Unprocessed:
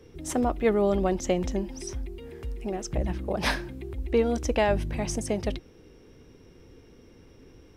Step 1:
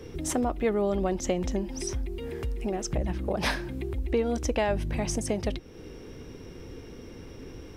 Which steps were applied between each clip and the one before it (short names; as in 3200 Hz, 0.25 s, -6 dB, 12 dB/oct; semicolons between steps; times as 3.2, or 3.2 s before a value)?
compressor 2:1, threshold -42 dBFS, peak gain reduction 13 dB; gain +9 dB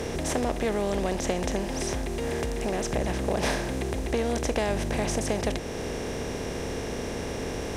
per-bin compression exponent 0.4; gain -4.5 dB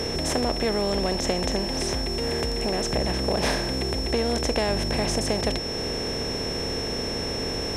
whine 5400 Hz -33 dBFS; gain +2 dB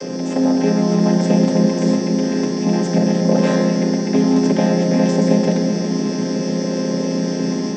chord vocoder minor triad, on F3; AGC gain up to 4 dB; reverb RT60 2.8 s, pre-delay 7 ms, DRR 1 dB; gain +4.5 dB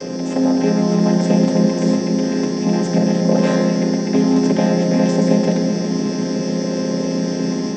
band noise 70–290 Hz -48 dBFS